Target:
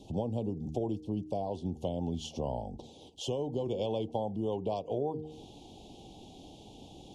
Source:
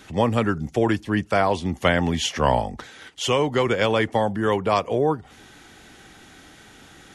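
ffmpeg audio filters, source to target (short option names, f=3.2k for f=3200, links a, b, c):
-af "aemphasis=mode=reproduction:type=75kf,bandreject=f=77.24:t=h:w=4,bandreject=f=154.48:t=h:w=4,bandreject=f=231.72:t=h:w=4,bandreject=f=308.96:t=h:w=4,bandreject=f=386.2:t=h:w=4,bandreject=f=463.44:t=h:w=4,acompressor=threshold=-33dB:ratio=3,asuperstop=centerf=1600:order=8:qfactor=0.76,asetnsamples=n=441:p=0,asendcmd='3.66 equalizer g 2',equalizer=f=2.1k:w=0.6:g=-5.5"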